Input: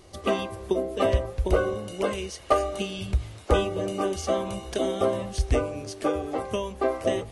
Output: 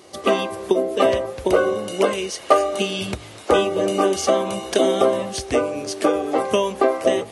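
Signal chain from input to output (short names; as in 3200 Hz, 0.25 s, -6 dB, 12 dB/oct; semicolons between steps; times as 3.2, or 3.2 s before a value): recorder AGC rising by 9.5 dB/s; HPF 220 Hz 12 dB/oct; gain +6.5 dB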